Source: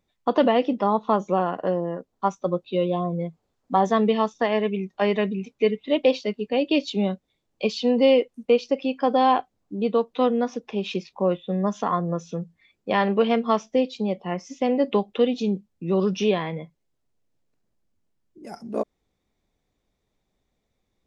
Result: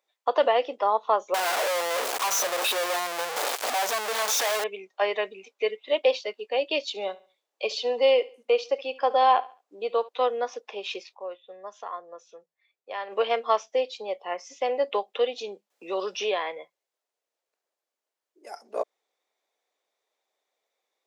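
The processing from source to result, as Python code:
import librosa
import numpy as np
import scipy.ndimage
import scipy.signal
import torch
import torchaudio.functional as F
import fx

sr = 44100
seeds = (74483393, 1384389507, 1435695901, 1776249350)

y = fx.clip_1bit(x, sr, at=(1.34, 4.64))
y = fx.echo_feedback(y, sr, ms=70, feedback_pct=32, wet_db=-19.5, at=(6.84, 10.09))
y = fx.band_squash(y, sr, depth_pct=40, at=(15.7, 16.52))
y = fx.edit(y, sr, fx.fade_down_up(start_s=11.14, length_s=1.99, db=-11.0, fade_s=0.17, curve='exp'), tone=tone)
y = scipy.signal.sosfilt(scipy.signal.butter(4, 490.0, 'highpass', fs=sr, output='sos'), y)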